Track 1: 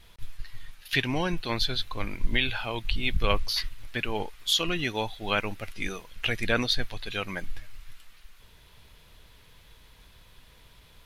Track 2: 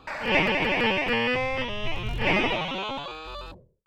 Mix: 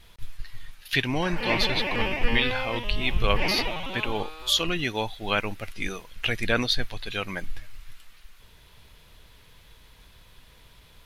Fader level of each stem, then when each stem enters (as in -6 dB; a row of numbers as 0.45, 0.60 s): +1.5, -4.5 dB; 0.00, 1.15 s